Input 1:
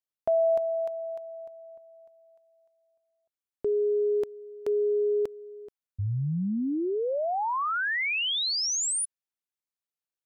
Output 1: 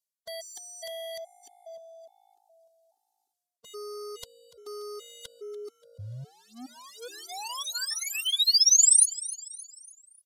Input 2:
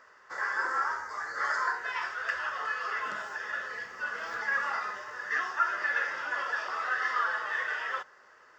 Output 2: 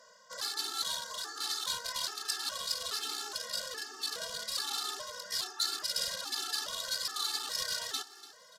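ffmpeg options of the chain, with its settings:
-filter_complex "[0:a]highpass=230,tiltshelf=f=1.1k:g=9,areverse,acompressor=threshold=-35dB:ratio=12:attack=38:release=310:knee=6:detection=rms,areverse,aeval=exprs='0.0168*(abs(mod(val(0)/0.0168+3,4)-2)-1)':c=same,aexciter=amount=5.1:drive=9.9:freq=3.3k,aresample=32000,aresample=44100,asplit=5[a][b][c][d][e];[b]adelay=290,afreqshift=54,volume=-17dB[f];[c]adelay=580,afreqshift=108,volume=-24.1dB[g];[d]adelay=870,afreqshift=162,volume=-31.3dB[h];[e]adelay=1160,afreqshift=216,volume=-38.4dB[i];[a][f][g][h][i]amix=inputs=5:normalize=0,afftfilt=real='re*gt(sin(2*PI*1.2*pts/sr)*(1-2*mod(floor(b*sr/1024/230),2)),0)':imag='im*gt(sin(2*PI*1.2*pts/sr)*(1-2*mod(floor(b*sr/1024/230),2)),0)':win_size=1024:overlap=0.75"

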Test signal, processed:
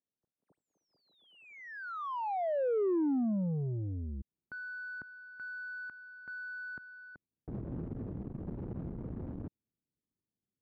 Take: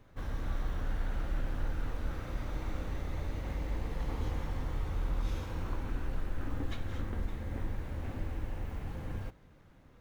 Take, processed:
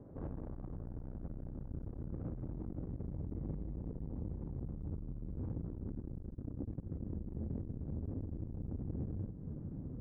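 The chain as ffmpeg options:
-af "asubboost=boost=5:cutoff=250,acompressor=threshold=-31dB:ratio=5,alimiter=level_in=11.5dB:limit=-24dB:level=0:latency=1:release=20,volume=-11.5dB,asoftclip=type=tanh:threshold=-40dB,adynamicsmooth=sensitivity=7:basefreq=550,bandpass=f=360:t=q:w=0.69:csg=0,volume=14dB"

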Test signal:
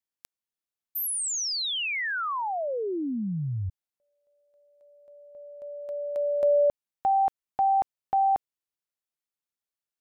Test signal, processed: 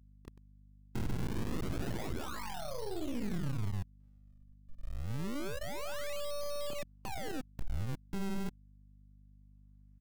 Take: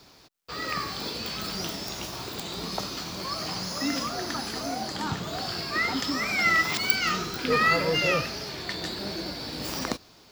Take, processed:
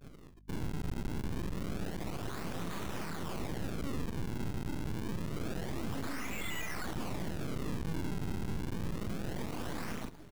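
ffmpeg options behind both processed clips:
-filter_complex "[0:a]afftdn=nr=19:nf=-45,highpass=f=110:p=1,asplit=2[a][b];[b]aecho=0:1:29.15|125.4:0.891|0.631[c];[a][c]amix=inputs=2:normalize=0,acrossover=split=290|2300[d][e][f];[e]acompressor=threshold=-36dB:ratio=5:attack=0.79:release=707:knee=2.83:detection=peak[g];[d][g][f]amix=inputs=3:normalize=0,acrossover=split=600|1200[h][i][j];[i]alimiter=level_in=19.5dB:limit=-24dB:level=0:latency=1:release=210,volume=-19.5dB[k];[h][k][j]amix=inputs=3:normalize=0,acrusher=samples=42:mix=1:aa=0.000001:lfo=1:lforange=67.2:lforate=0.27,asoftclip=type=tanh:threshold=-26dB,equalizer=f=570:t=o:w=1.1:g=-4,aeval=exprs='max(val(0),0)':c=same,acompressor=threshold=-48dB:ratio=12:attack=0.23:release=81:knee=6:detection=rms,aeval=exprs='val(0)+0.000141*(sin(2*PI*50*n/s)+sin(2*PI*2*50*n/s)/2+sin(2*PI*3*50*n/s)/3+sin(2*PI*4*50*n/s)/4+sin(2*PI*5*50*n/s)/5)':c=same,lowshelf=f=360:g=5,volume=14.5dB"

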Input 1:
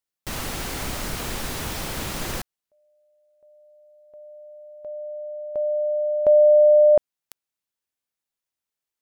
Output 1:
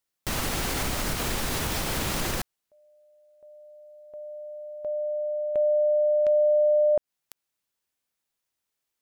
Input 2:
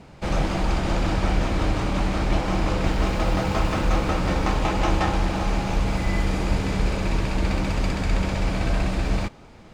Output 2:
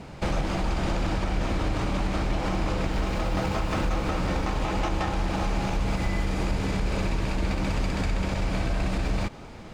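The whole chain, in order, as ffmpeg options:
-af "acompressor=threshold=-24dB:ratio=6:attack=0.12:release=336:knee=1:detection=peak,volume=4.5dB"

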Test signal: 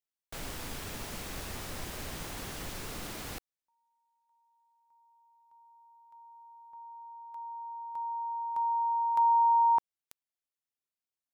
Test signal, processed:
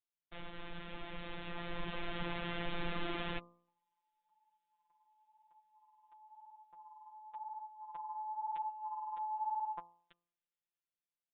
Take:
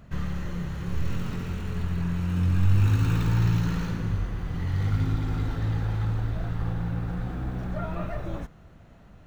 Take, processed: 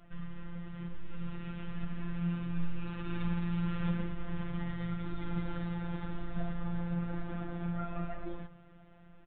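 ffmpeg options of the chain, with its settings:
-af "acompressor=threshold=-32dB:ratio=4:attack=0.29:release=157:knee=1:detection=rms,flanger=delay=3:depth=7.3:regen=20:speed=0.97:shape=sinusoidal,bandreject=f=63.45:t=h:w=4,bandreject=f=126.9:t=h:w=4,bandreject=f=190.35:t=h:w=4,bandreject=f=253.8:t=h:w=4,bandreject=f=317.25:t=h:w=4,bandreject=f=380.7:t=h:w=4,bandreject=f=444.15:t=h:w=4,bandreject=f=507.6:t=h:w=4,bandreject=f=571.05:t=h:w=4,bandreject=f=634.5:t=h:w=4,bandreject=f=697.95:t=h:w=4,bandreject=f=761.4:t=h:w=4,bandreject=f=824.85:t=h:w=4,bandreject=f=888.3:t=h:w=4,bandreject=f=951.75:t=h:w=4,bandreject=f=1.0152k:t=h:w=4,bandreject=f=1.07865k:t=h:w=4,bandreject=f=1.1421k:t=h:w=4,bandreject=f=1.20555k:t=h:w=4,afftfilt=real='hypot(re,im)*cos(PI*b)':imag='0':win_size=1024:overlap=0.75,aresample=8000,aresample=44100,dynaudnorm=f=270:g=13:m=9dB,volume=1.5dB"

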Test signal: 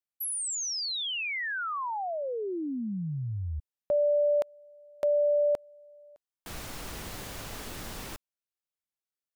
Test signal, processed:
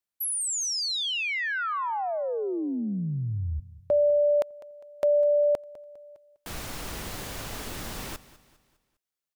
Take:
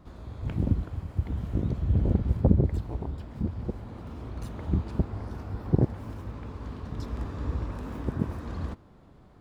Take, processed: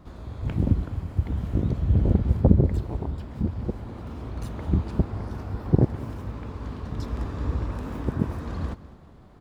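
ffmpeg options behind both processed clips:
-af "aecho=1:1:202|404|606|808:0.126|0.0541|0.0233|0.01,volume=3.5dB"

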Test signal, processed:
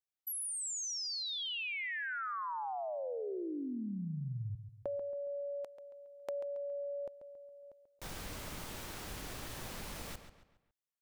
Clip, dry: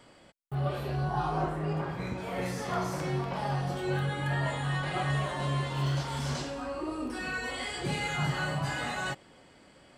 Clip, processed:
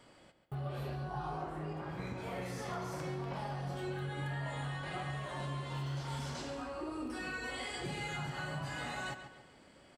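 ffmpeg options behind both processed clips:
-filter_complex "[0:a]acompressor=threshold=-33dB:ratio=6,asplit=2[a][b];[b]adelay=138,lowpass=f=4.6k:p=1,volume=-9.5dB,asplit=2[c][d];[d]adelay=138,lowpass=f=4.6k:p=1,volume=0.41,asplit=2[e][f];[f]adelay=138,lowpass=f=4.6k:p=1,volume=0.41,asplit=2[g][h];[h]adelay=138,lowpass=f=4.6k:p=1,volume=0.41[i];[c][e][g][i]amix=inputs=4:normalize=0[j];[a][j]amix=inputs=2:normalize=0,volume=-4dB"

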